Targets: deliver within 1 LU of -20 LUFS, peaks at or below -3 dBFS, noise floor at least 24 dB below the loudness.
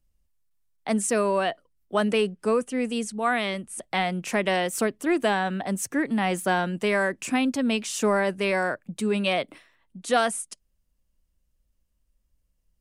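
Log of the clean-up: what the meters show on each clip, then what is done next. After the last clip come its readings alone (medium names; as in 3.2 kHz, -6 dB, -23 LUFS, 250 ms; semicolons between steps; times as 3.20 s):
loudness -25.5 LUFS; peak level -10.0 dBFS; loudness target -20.0 LUFS
-> trim +5.5 dB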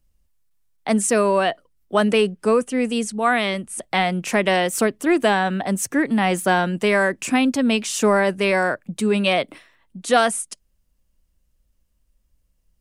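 loudness -20.0 LUFS; peak level -4.5 dBFS; noise floor -67 dBFS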